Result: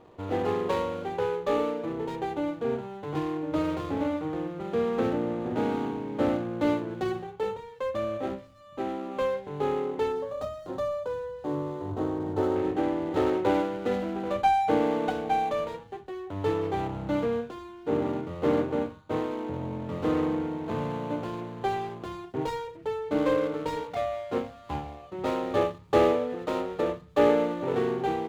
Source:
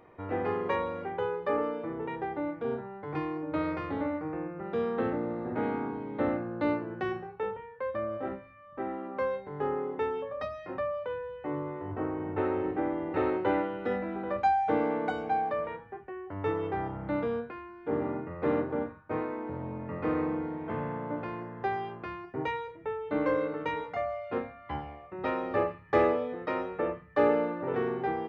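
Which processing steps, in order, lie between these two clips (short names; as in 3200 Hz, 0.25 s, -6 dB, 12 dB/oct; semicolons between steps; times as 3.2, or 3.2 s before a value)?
median filter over 25 samples; 10.12–12.56 bell 2400 Hz -9.5 dB 0.87 oct; gain +4 dB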